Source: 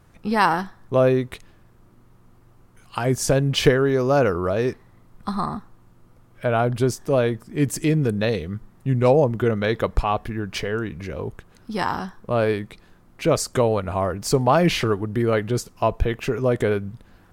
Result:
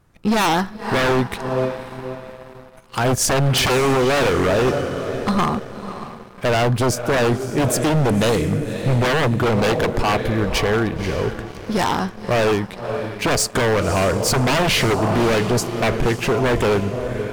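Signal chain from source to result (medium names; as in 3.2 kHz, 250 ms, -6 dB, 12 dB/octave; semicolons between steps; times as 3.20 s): echo that smears into a reverb 563 ms, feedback 41%, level -11.5 dB; waveshaping leveller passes 2; wavefolder -12 dBFS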